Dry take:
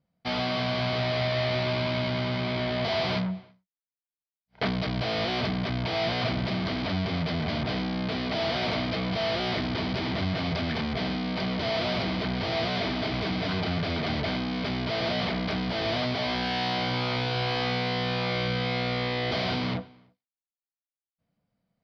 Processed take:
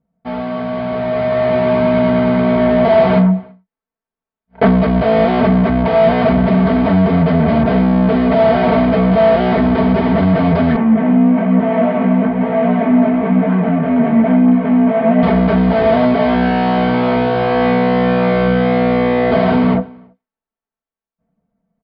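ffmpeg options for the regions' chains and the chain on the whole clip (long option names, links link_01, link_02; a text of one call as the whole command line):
ffmpeg -i in.wav -filter_complex "[0:a]asettb=1/sr,asplit=3[link_01][link_02][link_03];[link_01]atrim=end=10.764[link_04];[link_02]atrim=start=10.76:end=15.23,asetpts=PTS-STARTPTS,afade=type=in:duration=0.004:curve=qsin,afade=type=out:start_time=4.466:duration=0.004:curve=qsin,flanger=delay=15.5:depth=5:speed=1.1,highpass=170,equalizer=frequency=230:width_type=q:width=4:gain=9,equalizer=frequency=380:width_type=q:width=4:gain=-5,equalizer=frequency=1400:width_type=q:width=4:gain=-3,lowpass=frequency=2600:width=0.5412,lowpass=frequency=2600:width=1.3066[link_05];[link_03]atrim=start=15.226[link_06];[link_04][link_05]acrossfade=duration=0.004:curve1=hsin:curve2=qsin[link_07];[link_07][link_06]acrossfade=duration=0.004:curve1=qsin:curve2=hsin,lowpass=1200,aecho=1:1:4.5:0.8,dynaudnorm=framelen=250:gausssize=11:maxgain=10dB,volume=5dB" out.wav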